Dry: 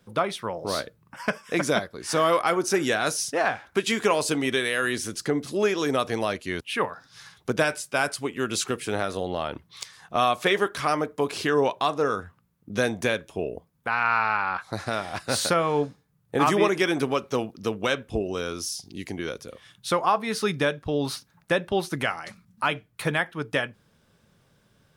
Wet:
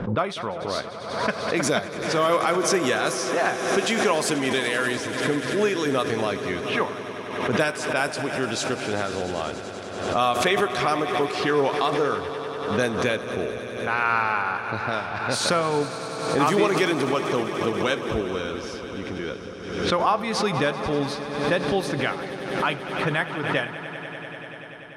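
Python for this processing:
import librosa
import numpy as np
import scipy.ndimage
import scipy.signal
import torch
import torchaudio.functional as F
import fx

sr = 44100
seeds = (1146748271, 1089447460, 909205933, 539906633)

y = fx.env_lowpass(x, sr, base_hz=1200.0, full_db=-20.0)
y = fx.echo_swell(y, sr, ms=97, loudest=5, wet_db=-16.0)
y = fx.pre_swell(y, sr, db_per_s=54.0)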